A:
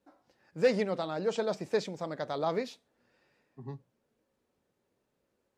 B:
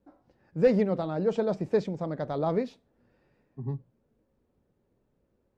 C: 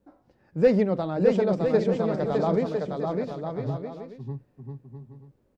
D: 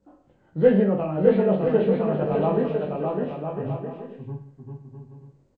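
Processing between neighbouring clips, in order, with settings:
spectral tilt −3.5 dB per octave
bouncing-ball delay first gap 610 ms, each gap 0.65×, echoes 5; level +2.5 dB
hearing-aid frequency compression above 1,200 Hz 1.5 to 1; reverse bouncing-ball delay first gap 20 ms, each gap 1.3×, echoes 5

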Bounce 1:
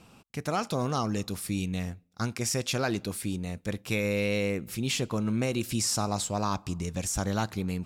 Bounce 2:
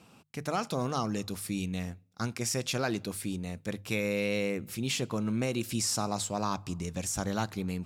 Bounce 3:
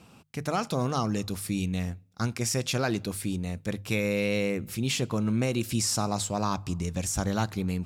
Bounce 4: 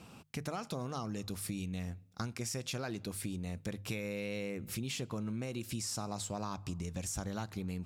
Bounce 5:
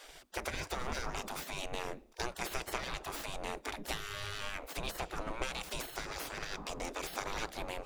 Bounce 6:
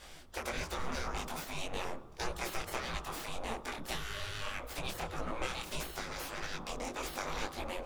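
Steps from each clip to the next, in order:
high-pass filter 78 Hz; mains-hum notches 50/100/150 Hz; level −2 dB
low-shelf EQ 73 Hz +12 dB; level +2.5 dB
downward compressor 6 to 1, threshold −36 dBFS, peak gain reduction 13 dB
lower of the sound and its delayed copy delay 0.83 ms; gate on every frequency bin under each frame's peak −20 dB weak; spectral tilt −2.5 dB per octave; level +14.5 dB
background noise brown −56 dBFS; on a send at −10 dB: convolution reverb RT60 1.2 s, pre-delay 3 ms; on the sum: micro pitch shift up and down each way 59 cents; level +3.5 dB

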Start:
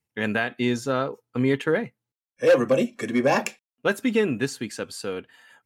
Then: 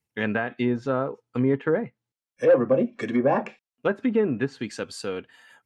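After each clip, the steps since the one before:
treble cut that deepens with the level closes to 1,200 Hz, closed at −19 dBFS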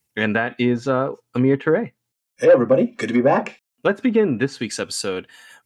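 high-shelf EQ 4,100 Hz +10.5 dB
level +5 dB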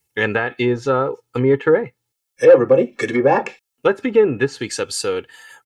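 comb filter 2.3 ms, depth 55%
level +1 dB

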